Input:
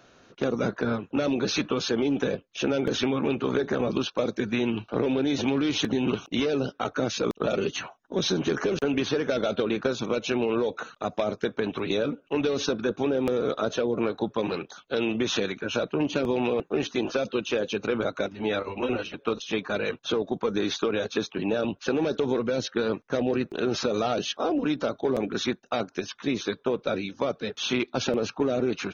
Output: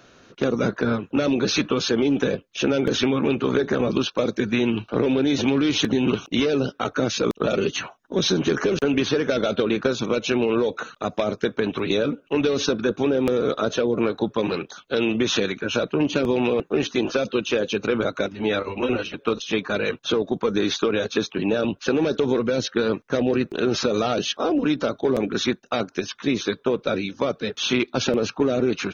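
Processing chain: peaking EQ 760 Hz -3.5 dB 0.77 oct; trim +5 dB

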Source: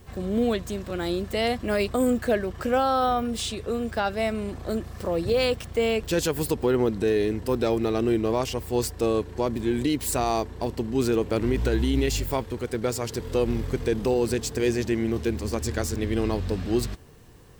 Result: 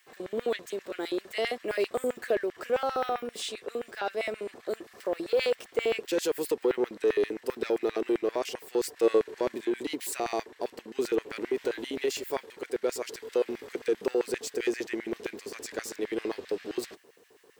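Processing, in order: saturation -16 dBFS, distortion -20 dB; LFO high-pass square 7.6 Hz 400–1900 Hz; 8.96–9.65 s: harmonic-percussive split harmonic +6 dB; trim -6 dB

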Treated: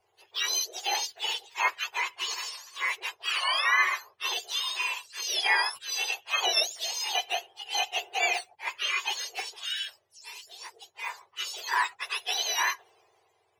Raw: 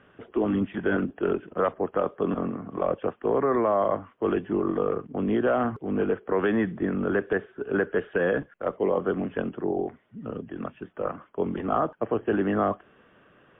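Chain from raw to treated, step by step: spectrum inverted on a logarithmic axis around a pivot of 1.1 kHz; three bands expanded up and down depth 40%; trim +1 dB

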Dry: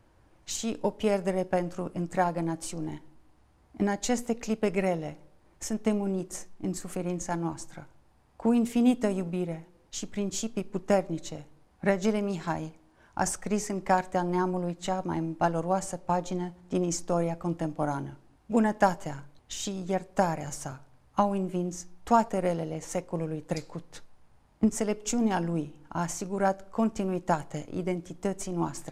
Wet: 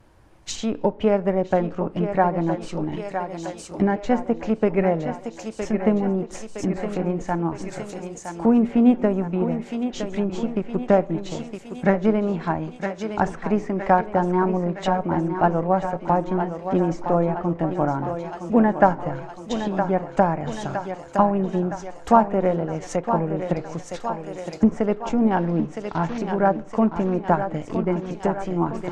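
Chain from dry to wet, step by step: 25.38–26.18 s: CVSD coder 32 kbps; vibrato 0.99 Hz 24 cents; on a send: thinning echo 964 ms, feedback 62%, high-pass 210 Hz, level -8 dB; on the sum: low-pass that closes with the level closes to 1.8 kHz, closed at -27 dBFS; trim +7 dB

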